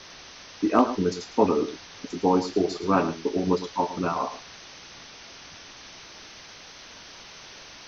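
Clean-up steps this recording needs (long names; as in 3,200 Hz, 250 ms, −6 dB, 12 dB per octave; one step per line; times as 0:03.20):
clipped peaks rebuilt −7 dBFS
noise reduction from a noise print 24 dB
echo removal 109 ms −12.5 dB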